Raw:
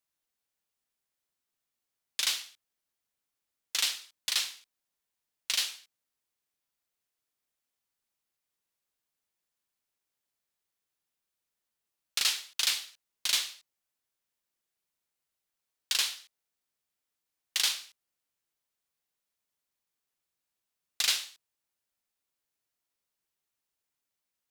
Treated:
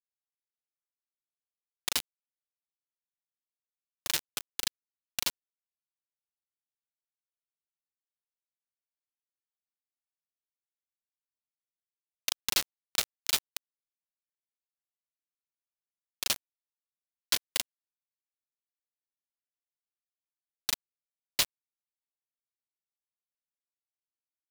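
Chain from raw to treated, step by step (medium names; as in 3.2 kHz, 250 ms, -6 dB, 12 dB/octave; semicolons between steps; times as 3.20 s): slices played last to first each 156 ms, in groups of 3; feedback comb 350 Hz, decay 0.45 s, harmonics all, mix 40%; small samples zeroed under -25 dBFS; trim +7 dB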